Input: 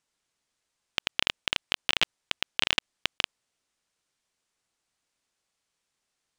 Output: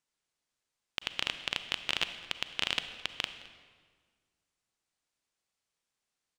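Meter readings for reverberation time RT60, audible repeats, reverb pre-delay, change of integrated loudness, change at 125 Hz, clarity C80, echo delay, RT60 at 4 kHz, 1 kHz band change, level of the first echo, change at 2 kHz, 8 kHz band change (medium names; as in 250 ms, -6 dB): 1.7 s, 1, 33 ms, -5.5 dB, -5.5 dB, 11.5 dB, 214 ms, 1.3 s, -5.5 dB, -20.5 dB, -5.5 dB, -5.5 dB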